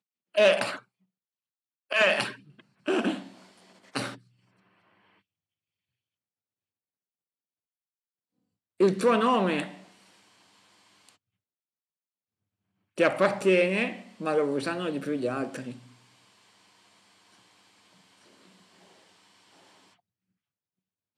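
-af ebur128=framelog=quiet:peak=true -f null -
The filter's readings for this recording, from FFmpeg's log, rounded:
Integrated loudness:
  I:         -26.3 LUFS
  Threshold: -39.8 LUFS
Loudness range:
  LRA:        14.8 LU
  Threshold: -51.3 LUFS
  LRA low:   -42.1 LUFS
  LRA high:  -27.3 LUFS
True peak:
  Peak:       -7.9 dBFS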